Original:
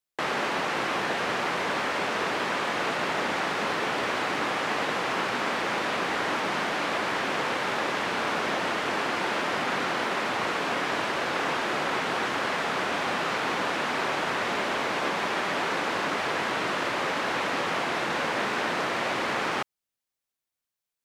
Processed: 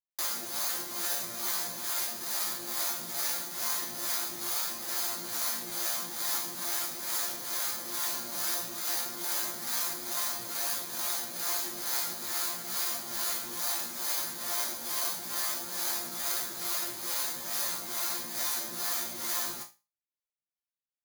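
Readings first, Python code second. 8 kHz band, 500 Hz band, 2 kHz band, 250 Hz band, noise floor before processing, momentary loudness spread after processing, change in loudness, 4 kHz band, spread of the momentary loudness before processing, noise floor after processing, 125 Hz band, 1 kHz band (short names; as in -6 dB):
+10.0 dB, -16.0 dB, -14.5 dB, -14.0 dB, under -85 dBFS, 1 LU, -3.5 dB, -3.5 dB, 0 LU, under -85 dBFS, -14.0 dB, -14.0 dB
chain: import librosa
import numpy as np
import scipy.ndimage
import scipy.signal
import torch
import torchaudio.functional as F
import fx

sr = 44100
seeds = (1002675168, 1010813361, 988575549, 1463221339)

y = (np.kron(scipy.signal.resample_poly(x, 1, 8), np.eye(8)[0]) * 8)[:len(x)]
y = scipy.signal.sosfilt(scipy.signal.butter(2, 75.0, 'highpass', fs=sr, output='sos'), y)
y = fx.peak_eq(y, sr, hz=450.0, db=-9.0, octaves=0.27)
y = fx.harmonic_tremolo(y, sr, hz=2.3, depth_pct=70, crossover_hz=440.0)
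y = fx.resonator_bank(y, sr, root=46, chord='fifth', decay_s=0.28)
y = y * 10.0 ** (1.5 / 20.0)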